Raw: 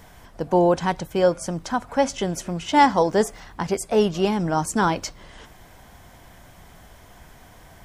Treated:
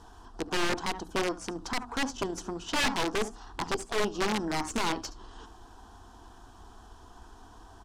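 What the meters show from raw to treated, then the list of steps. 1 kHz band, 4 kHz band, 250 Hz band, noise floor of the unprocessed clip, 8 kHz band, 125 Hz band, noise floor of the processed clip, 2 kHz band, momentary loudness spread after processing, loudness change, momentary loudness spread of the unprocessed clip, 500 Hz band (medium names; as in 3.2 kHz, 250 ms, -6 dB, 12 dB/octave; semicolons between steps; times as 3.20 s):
-11.5 dB, -0.5 dB, -10.0 dB, -49 dBFS, -5.0 dB, -13.0 dB, -53 dBFS, -3.0 dB, 14 LU, -9.5 dB, 12 LU, -12.5 dB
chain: treble shelf 12 kHz -4.5 dB; hum notches 60/120/180/240/300 Hz; in parallel at 0 dB: compression 4:1, threshold -30 dBFS, peak gain reduction 16.5 dB; on the sum: static phaser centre 570 Hz, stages 6; Chebyshev shaper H 6 -16 dB, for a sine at -4.5 dBFS; delay 71 ms -17.5 dB; integer overflow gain 14.5 dB; distance through air 66 m; trim -5.5 dB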